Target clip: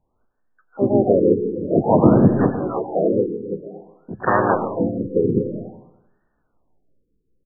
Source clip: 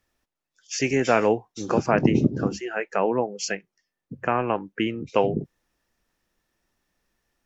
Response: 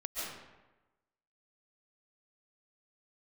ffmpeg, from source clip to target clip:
-filter_complex "[0:a]asplit=4[a][b][c][d];[b]asetrate=37084,aresample=44100,atempo=1.18921,volume=-1dB[e];[c]asetrate=66075,aresample=44100,atempo=0.66742,volume=-2dB[f];[d]asetrate=88200,aresample=44100,atempo=0.5,volume=-11dB[g];[a][e][f][g]amix=inputs=4:normalize=0,asplit=2[h][i];[1:a]atrim=start_sample=2205,asetrate=57330,aresample=44100[j];[i][j]afir=irnorm=-1:irlink=0,volume=-3.5dB[k];[h][k]amix=inputs=2:normalize=0,afftfilt=real='re*lt(b*sr/1024,500*pow(1900/500,0.5+0.5*sin(2*PI*0.52*pts/sr)))':imag='im*lt(b*sr/1024,500*pow(1900/500,0.5+0.5*sin(2*PI*0.52*pts/sr)))':win_size=1024:overlap=0.75"

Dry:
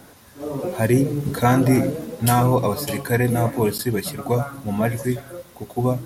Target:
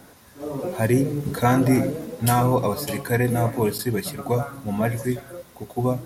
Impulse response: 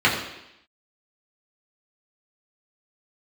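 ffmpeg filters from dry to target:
-filter_complex "[0:a]asplit=2[a][b];[1:a]atrim=start_sample=2205[c];[b][c]afir=irnorm=-1:irlink=0,volume=-36.5dB[d];[a][d]amix=inputs=2:normalize=0,volume=-2dB"

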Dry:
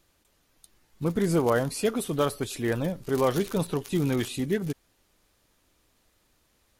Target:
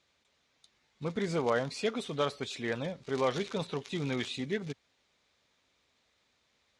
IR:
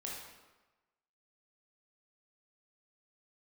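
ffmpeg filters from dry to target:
-af "highpass=100,equalizer=f=110:t=q:w=4:g=-6,equalizer=f=180:t=q:w=4:g=-5,equalizer=f=320:t=q:w=4:g=-8,equalizer=f=2.2k:t=q:w=4:g=6,equalizer=f=3.7k:t=q:w=4:g=6,lowpass=f=6.9k:w=0.5412,lowpass=f=6.9k:w=1.3066,volume=-4.5dB"

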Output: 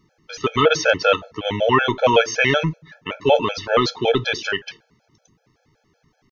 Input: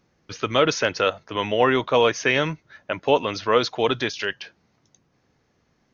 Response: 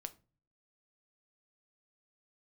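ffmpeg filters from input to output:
-filter_complex "[0:a]atempo=0.94,asplit=2[a][b];[1:a]atrim=start_sample=2205,lowshelf=f=85:g=4.5[c];[b][c]afir=irnorm=-1:irlink=0,volume=5dB[d];[a][d]amix=inputs=2:normalize=0,afftfilt=real='re*gt(sin(2*PI*5.3*pts/sr)*(1-2*mod(floor(b*sr/1024/440),2)),0)':imag='im*gt(sin(2*PI*5.3*pts/sr)*(1-2*mod(floor(b*sr/1024/440),2)),0)':win_size=1024:overlap=0.75"

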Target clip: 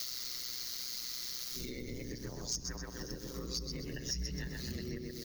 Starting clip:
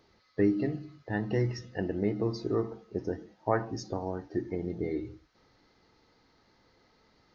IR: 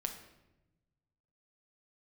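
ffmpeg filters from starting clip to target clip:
-filter_complex "[0:a]areverse,aeval=exprs='val(0)*sin(2*PI*62*n/s)':c=same,acompressor=threshold=-47dB:ratio=2.5,crystalizer=i=5.5:c=0,atempo=1.4,asplit=2[a][b];[b]adelay=127,lowpass=f=2.5k:p=1,volume=-3dB,asplit=2[c][d];[d]adelay=127,lowpass=f=2.5k:p=1,volume=0.55,asplit=2[e][f];[f]adelay=127,lowpass=f=2.5k:p=1,volume=0.55,asplit=2[g][h];[h]adelay=127,lowpass=f=2.5k:p=1,volume=0.55,asplit=2[i][j];[j]adelay=127,lowpass=f=2.5k:p=1,volume=0.55,asplit=2[k][l];[l]adelay=127,lowpass=f=2.5k:p=1,volume=0.55,asplit=2[m][n];[n]adelay=127,lowpass=f=2.5k:p=1,volume=0.55,asplit=2[o][p];[p]adelay=127,lowpass=f=2.5k:p=1,volume=0.55[q];[a][c][e][g][i][k][m][o][q]amix=inputs=9:normalize=0,asplit=2[r][s];[1:a]atrim=start_sample=2205,asetrate=70560,aresample=44100[t];[s][t]afir=irnorm=-1:irlink=0,volume=-6dB[u];[r][u]amix=inputs=2:normalize=0,crystalizer=i=5:c=0,acrossover=split=160[v][w];[w]acompressor=threshold=-52dB:ratio=4[x];[v][x]amix=inputs=2:normalize=0,highshelf=f=4.1k:g=12,asoftclip=type=tanh:threshold=-36.5dB,equalizer=f=780:w=3.6:g=-9.5,volume=7.5dB"

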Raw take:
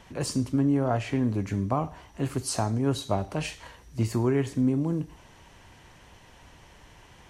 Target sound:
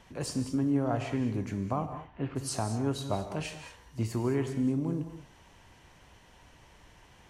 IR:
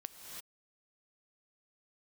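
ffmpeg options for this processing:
-filter_complex "[0:a]asplit=3[a][b][c];[a]afade=t=out:st=1.85:d=0.02[d];[b]lowpass=f=3.1k:w=0.5412,lowpass=f=3.1k:w=1.3066,afade=t=in:st=1.85:d=0.02,afade=t=out:st=2.35:d=0.02[e];[c]afade=t=in:st=2.35:d=0.02[f];[d][e][f]amix=inputs=3:normalize=0[g];[1:a]atrim=start_sample=2205,afade=t=out:st=0.27:d=0.01,atrim=end_sample=12348[h];[g][h]afir=irnorm=-1:irlink=0"

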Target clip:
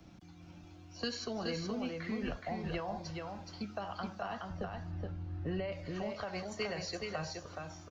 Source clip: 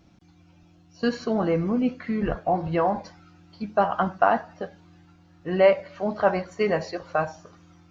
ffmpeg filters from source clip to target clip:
-filter_complex "[0:a]asettb=1/sr,asplit=3[a][b][c];[a]atrim=end=4.494[d];[b]atrim=start=4.49:end=5.72,asetpts=PTS-STARTPTS,afade=t=in:d=0.004:c=qsin,afade=t=out:st=1.226:d=0.004:c=qsin,aemphasis=mode=reproduction:type=riaa[e];[c]atrim=start=5.716[f];[d][e]acrossfade=d=0.004:c1=hsin:c2=qsin[g];[g][f]acrossfade=d=0.004:c1=qsin:c2=hsin,acrossover=split=310|330|2300[h][i][j][k];[h]acompressor=threshold=-37dB:ratio=6[l];[l][i][j][k]amix=inputs=4:normalize=0,alimiter=limit=-15.5dB:level=0:latency=1:release=91,acrossover=split=150|3000[m][n][o];[n]acompressor=threshold=-43dB:ratio=4[p];[m][p][o]amix=inputs=3:normalize=0,aecho=1:1:422:0.631,volume=1dB"

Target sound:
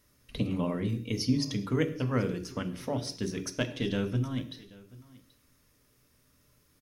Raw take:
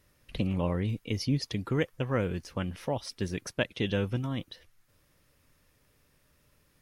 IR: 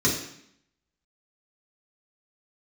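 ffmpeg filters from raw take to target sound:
-filter_complex "[0:a]asettb=1/sr,asplit=3[a][b][c];[a]atrim=end=3.604[d];[b]atrim=start=3.6:end=4.51,asetpts=PTS-STARTPTS,afade=t=in:d=0.004:c=qsin,afade=t=out:st=0.906:d=0.004:c=qsin,aeval=exprs='if(lt(val(0),0),0.708*val(0),val(0))':c=same[e];[c]atrim=start=4.506[f];[d][e]acrossfade=d=0.004:c1=hsin:c2=qsin[g];[g][f]acrossfade=d=0.004:c1=qsin:c2=hsin,highshelf=f=4.2k:g=6,aecho=1:1:782:0.0841,asplit=2[h][i];[1:a]atrim=start_sample=2205,afade=t=out:st=0.27:d=0.01,atrim=end_sample=12348[j];[i][j]afir=irnorm=-1:irlink=0,volume=-19dB[k];[h][k]amix=inputs=2:normalize=0,volume=-3.5dB"

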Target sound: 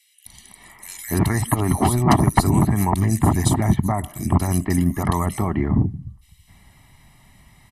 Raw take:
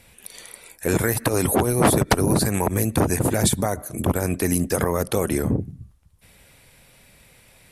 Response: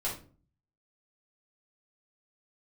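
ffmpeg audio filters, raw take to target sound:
-filter_complex "[0:a]highshelf=f=3.9k:g=-8,aecho=1:1:1:0.96,acrossover=split=2600[a][b];[a]adelay=260[c];[c][b]amix=inputs=2:normalize=0"

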